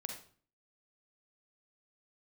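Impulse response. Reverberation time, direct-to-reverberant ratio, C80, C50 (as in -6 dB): 0.45 s, 3.0 dB, 9.5 dB, 5.0 dB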